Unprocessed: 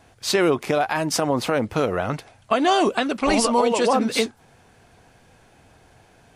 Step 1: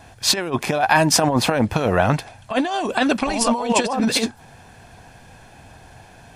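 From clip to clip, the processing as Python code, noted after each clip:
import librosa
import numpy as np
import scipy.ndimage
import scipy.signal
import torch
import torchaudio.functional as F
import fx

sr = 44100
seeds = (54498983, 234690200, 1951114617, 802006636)

y = fx.over_compress(x, sr, threshold_db=-22.0, ratio=-0.5)
y = y + 0.35 * np.pad(y, (int(1.2 * sr / 1000.0), 0))[:len(y)]
y = y * librosa.db_to_amplitude(4.5)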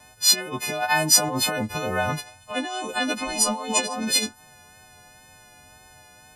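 y = fx.freq_snap(x, sr, grid_st=3)
y = fx.wow_flutter(y, sr, seeds[0], rate_hz=2.1, depth_cents=20.0)
y = y * librosa.db_to_amplitude(-8.5)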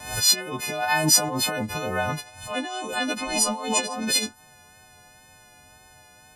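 y = fx.pre_swell(x, sr, db_per_s=94.0)
y = y * librosa.db_to_amplitude(-1.5)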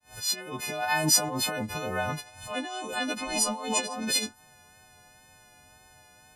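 y = fx.fade_in_head(x, sr, length_s=0.6)
y = y * librosa.db_to_amplitude(-4.0)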